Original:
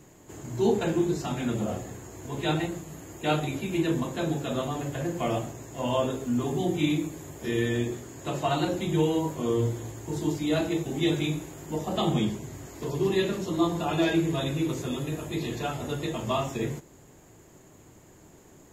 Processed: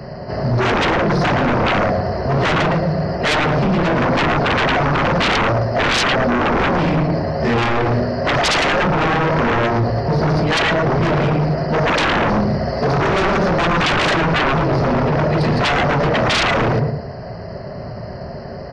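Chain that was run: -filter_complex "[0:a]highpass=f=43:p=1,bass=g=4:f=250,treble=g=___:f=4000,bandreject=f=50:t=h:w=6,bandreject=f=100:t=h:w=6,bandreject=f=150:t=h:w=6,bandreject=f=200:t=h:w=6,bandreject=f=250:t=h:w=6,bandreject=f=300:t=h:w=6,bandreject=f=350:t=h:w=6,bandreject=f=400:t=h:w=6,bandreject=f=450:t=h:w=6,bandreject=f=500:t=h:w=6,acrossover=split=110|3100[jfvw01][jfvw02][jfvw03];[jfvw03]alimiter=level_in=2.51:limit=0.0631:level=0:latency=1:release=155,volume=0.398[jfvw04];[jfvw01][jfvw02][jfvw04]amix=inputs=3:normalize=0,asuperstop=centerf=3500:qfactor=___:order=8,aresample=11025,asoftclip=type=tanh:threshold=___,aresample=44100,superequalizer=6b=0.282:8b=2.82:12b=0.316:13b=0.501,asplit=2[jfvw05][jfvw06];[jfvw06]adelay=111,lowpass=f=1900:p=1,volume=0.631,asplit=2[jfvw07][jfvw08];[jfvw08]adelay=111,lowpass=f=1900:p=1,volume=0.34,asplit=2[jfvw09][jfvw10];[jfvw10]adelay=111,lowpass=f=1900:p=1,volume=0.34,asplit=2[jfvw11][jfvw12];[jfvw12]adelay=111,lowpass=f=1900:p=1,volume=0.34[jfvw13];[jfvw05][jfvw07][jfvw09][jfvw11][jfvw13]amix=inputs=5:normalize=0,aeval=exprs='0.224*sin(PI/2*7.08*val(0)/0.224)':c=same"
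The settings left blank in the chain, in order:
9, 3.4, 0.0596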